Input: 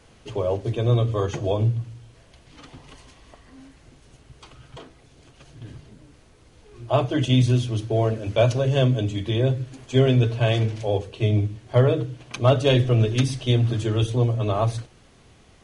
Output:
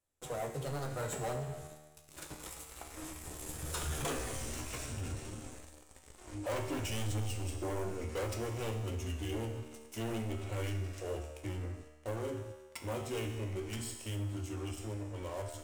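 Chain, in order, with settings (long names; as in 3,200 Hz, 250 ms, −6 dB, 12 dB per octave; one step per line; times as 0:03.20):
source passing by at 0:04.13, 54 m/s, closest 15 metres
leveller curve on the samples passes 5
high shelf with overshoot 6,000 Hz +9 dB, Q 1.5
tuned comb filter 76 Hz, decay 1.3 s, harmonics all, mix 80%
flanger 0.56 Hz, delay 9.2 ms, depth 8.6 ms, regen +57%
parametric band 170 Hz −6.5 dB 0.86 octaves
in parallel at −2 dB: downward compressor, threshold −55 dBFS, peak gain reduction 13.5 dB
on the sum: soft clipping −38 dBFS, distortion −21 dB
level +10 dB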